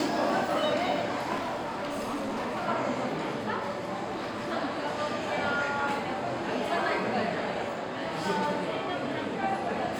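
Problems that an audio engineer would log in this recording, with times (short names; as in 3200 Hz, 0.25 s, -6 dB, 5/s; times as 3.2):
1.35–2.68 clipped -29 dBFS
4.06–4.53 clipped -30 dBFS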